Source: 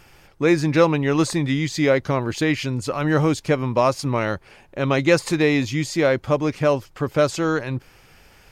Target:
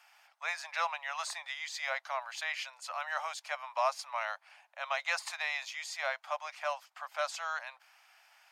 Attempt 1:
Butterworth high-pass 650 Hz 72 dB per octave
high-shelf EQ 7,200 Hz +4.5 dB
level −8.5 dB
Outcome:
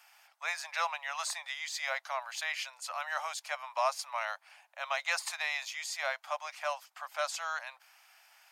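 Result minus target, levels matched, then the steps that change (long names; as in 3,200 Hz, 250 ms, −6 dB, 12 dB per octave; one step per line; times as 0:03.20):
8,000 Hz band +4.0 dB
change: high-shelf EQ 7,200 Hz −5 dB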